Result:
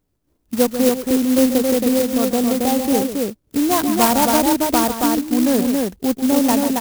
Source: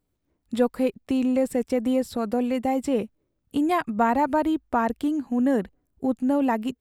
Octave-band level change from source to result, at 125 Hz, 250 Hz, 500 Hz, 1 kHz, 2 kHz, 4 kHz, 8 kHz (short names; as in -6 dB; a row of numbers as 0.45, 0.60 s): +7.5, +7.0, +6.5, +5.5, +6.0, +16.0, +22.5 dB